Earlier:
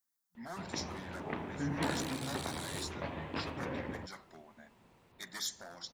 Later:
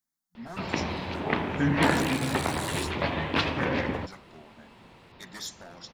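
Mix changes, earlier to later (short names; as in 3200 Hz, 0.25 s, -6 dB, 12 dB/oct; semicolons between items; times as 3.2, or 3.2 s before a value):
speech: add tilt -3 dB/oct; first sound +11.0 dB; master: add high shelf 2400 Hz +8.5 dB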